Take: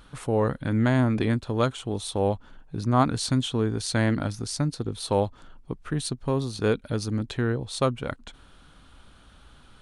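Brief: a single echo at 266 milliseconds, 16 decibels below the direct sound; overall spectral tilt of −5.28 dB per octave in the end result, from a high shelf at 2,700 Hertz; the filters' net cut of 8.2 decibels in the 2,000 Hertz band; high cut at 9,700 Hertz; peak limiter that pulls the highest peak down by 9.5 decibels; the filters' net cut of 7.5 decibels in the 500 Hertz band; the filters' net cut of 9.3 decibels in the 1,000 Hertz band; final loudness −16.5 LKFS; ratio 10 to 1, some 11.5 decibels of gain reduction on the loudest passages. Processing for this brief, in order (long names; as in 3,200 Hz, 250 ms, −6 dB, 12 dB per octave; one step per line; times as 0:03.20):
low-pass filter 9,700 Hz
parametric band 500 Hz −7 dB
parametric band 1,000 Hz −8 dB
parametric band 2,000 Hz −5.5 dB
high-shelf EQ 2,700 Hz −4 dB
downward compressor 10 to 1, threshold −31 dBFS
brickwall limiter −29.5 dBFS
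single-tap delay 266 ms −16 dB
level +24 dB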